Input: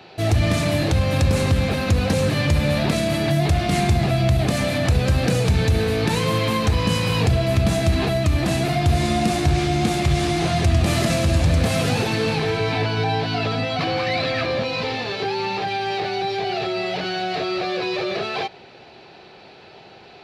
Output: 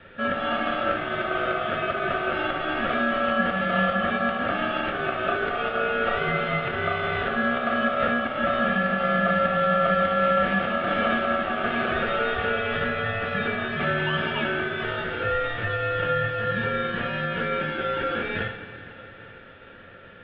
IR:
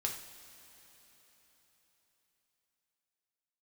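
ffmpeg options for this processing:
-filter_complex "[0:a]highpass=f=200:t=q:w=0.5412,highpass=f=200:t=q:w=1.307,lowpass=f=2.2k:t=q:w=0.5176,lowpass=f=2.2k:t=q:w=0.7071,lowpass=f=2.2k:t=q:w=1.932,afreqshift=54[a];[1:a]atrim=start_sample=2205[b];[a][b]afir=irnorm=-1:irlink=0,aeval=exprs='val(0)*sin(2*PI*950*n/s)':c=same"

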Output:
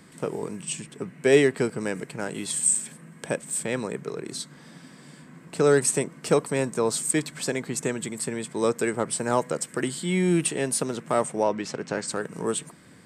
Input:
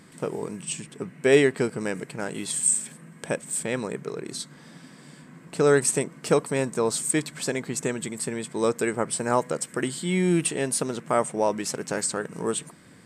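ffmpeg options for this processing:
-filter_complex "[0:a]acrossover=split=300|1000|2200[a][b][c][d];[c]asoftclip=type=hard:threshold=-29dB[e];[a][b][e][d]amix=inputs=4:normalize=0,asettb=1/sr,asplit=3[f][g][h];[f]atrim=end=11.434[i];[g]atrim=start=11.43:end=12.08,asetpts=PTS-STARTPTS,afade=t=in:d=0.004:c=qsin,afade=t=out:st=0.646:d=0.004:c=qsin,lowpass=4.6k[j];[h]atrim=start=12.076[k];[i][j]acrossfade=d=0.004:c1=hsin:c2=qsin[l];[l][k]acrossfade=d=0.004:c1=qsin:c2=hsin"

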